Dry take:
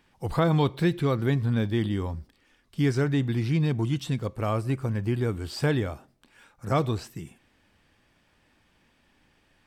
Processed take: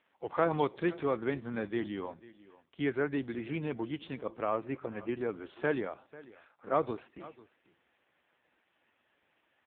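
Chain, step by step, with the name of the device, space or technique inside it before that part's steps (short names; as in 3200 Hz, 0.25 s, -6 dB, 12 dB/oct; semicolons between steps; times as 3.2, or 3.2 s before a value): satellite phone (BPF 350–3300 Hz; echo 0.493 s -19.5 dB; gain -1.5 dB; AMR-NB 5.9 kbps 8000 Hz)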